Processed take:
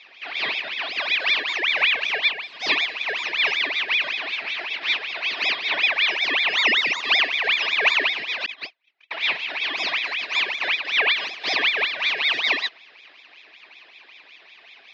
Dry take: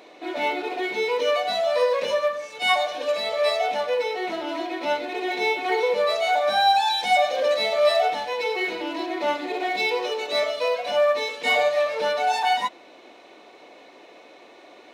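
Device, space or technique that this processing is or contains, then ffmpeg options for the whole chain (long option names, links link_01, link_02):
voice changer toy: -filter_complex "[0:a]asettb=1/sr,asplit=3[link_01][link_02][link_03];[link_01]atrim=end=8.464[link_04];[link_02]atrim=start=8.46:end=9.11,asetpts=PTS-STARTPTS,afade=type=in:duration=0.004:curve=qsin,afade=type=out:start_time=0.646:duration=0.004:curve=qsin,agate=range=-47dB:threshold=-23dB:ratio=16:detection=peak[link_05];[link_03]atrim=start=9.106[link_06];[link_04][link_05]acrossfade=duration=0.004:curve1=hsin:curve2=qsin[link_07];[link_07][link_06]acrossfade=duration=0.004:curve1=qsin:curve2=hsin,aeval=exprs='val(0)*sin(2*PI*2000*n/s+2000*0.5/5.3*sin(2*PI*5.3*n/s))':channel_layout=same,highpass=450,equalizer=frequency=520:width_type=q:width=4:gain=-8,equalizer=frequency=820:width_type=q:width=4:gain=-4,equalizer=frequency=1400:width_type=q:width=4:gain=-8,equalizer=frequency=2500:width_type=q:width=4:gain=8,equalizer=frequency=4000:width_type=q:width=4:gain=3,lowpass=frequency=4500:width=0.5412,lowpass=frequency=4500:width=1.3066,volume=1.5dB"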